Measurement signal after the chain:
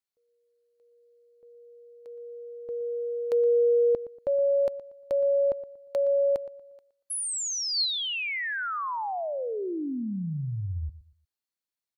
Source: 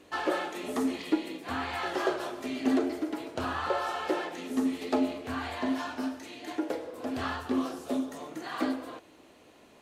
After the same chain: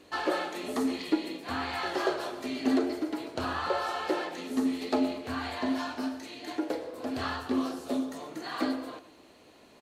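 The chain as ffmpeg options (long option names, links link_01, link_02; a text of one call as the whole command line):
ffmpeg -i in.wav -filter_complex "[0:a]equalizer=frequency=4300:width=6.7:gain=7,asplit=2[link_01][link_02];[link_02]adelay=118,lowpass=frequency=2800:poles=1,volume=-15.5dB,asplit=2[link_03][link_04];[link_04]adelay=118,lowpass=frequency=2800:poles=1,volume=0.28,asplit=2[link_05][link_06];[link_06]adelay=118,lowpass=frequency=2800:poles=1,volume=0.28[link_07];[link_01][link_03][link_05][link_07]amix=inputs=4:normalize=0" out.wav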